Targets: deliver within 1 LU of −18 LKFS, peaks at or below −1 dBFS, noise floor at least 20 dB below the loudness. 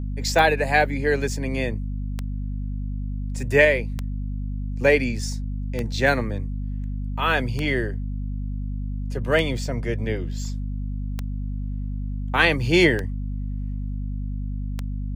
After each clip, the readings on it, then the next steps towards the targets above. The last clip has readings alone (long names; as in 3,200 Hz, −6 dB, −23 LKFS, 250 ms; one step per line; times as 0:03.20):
number of clicks 9; mains hum 50 Hz; hum harmonics up to 250 Hz; level of the hum −25 dBFS; integrated loudness −24.5 LKFS; sample peak −4.5 dBFS; target loudness −18.0 LKFS
→ click removal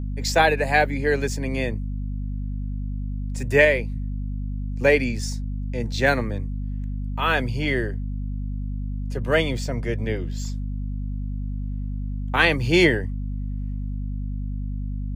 number of clicks 0; mains hum 50 Hz; hum harmonics up to 250 Hz; level of the hum −25 dBFS
→ mains-hum notches 50/100/150/200/250 Hz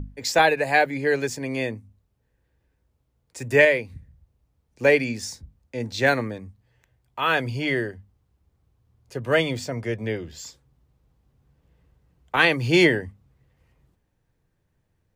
mains hum none found; integrated loudness −22.5 LKFS; sample peak −4.5 dBFS; target loudness −18.0 LKFS
→ level +4.5 dB
brickwall limiter −1 dBFS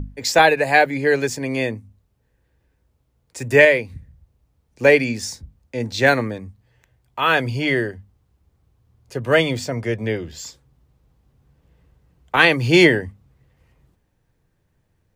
integrated loudness −18.0 LKFS; sample peak −1.0 dBFS; background noise floor −67 dBFS